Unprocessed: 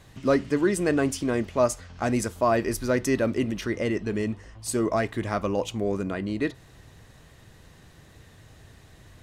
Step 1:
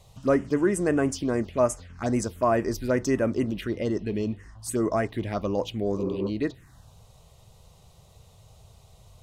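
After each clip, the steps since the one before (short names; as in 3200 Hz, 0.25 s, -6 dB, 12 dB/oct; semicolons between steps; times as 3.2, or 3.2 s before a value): spectral repair 6–6.26, 280–2500 Hz before; envelope phaser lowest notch 260 Hz, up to 4200 Hz, full sweep at -20 dBFS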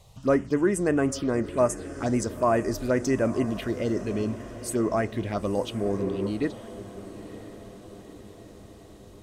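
diffused feedback echo 0.953 s, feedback 58%, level -14.5 dB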